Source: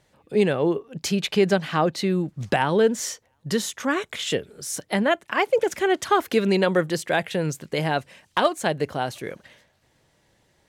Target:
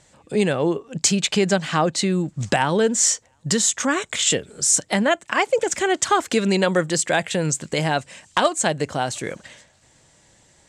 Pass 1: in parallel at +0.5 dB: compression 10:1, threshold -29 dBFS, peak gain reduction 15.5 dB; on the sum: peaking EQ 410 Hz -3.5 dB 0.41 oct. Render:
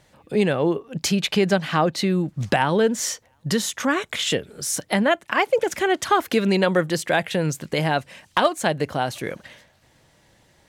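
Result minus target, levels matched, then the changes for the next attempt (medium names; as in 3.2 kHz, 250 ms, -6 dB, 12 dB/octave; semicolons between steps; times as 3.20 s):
8 kHz band -7.5 dB
add after the parallel path: resonant low-pass 7.7 kHz, resonance Q 4.6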